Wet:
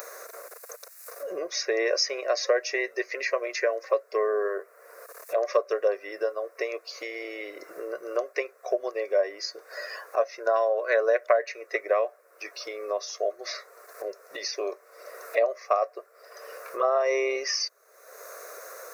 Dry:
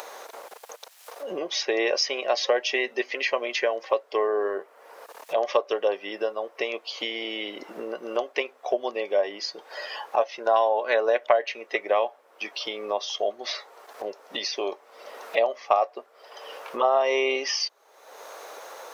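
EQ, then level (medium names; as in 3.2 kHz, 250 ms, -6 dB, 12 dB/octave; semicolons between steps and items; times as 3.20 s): tilt EQ +3.5 dB/octave; tilt shelf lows +5 dB, about 1.3 kHz; static phaser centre 860 Hz, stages 6; 0.0 dB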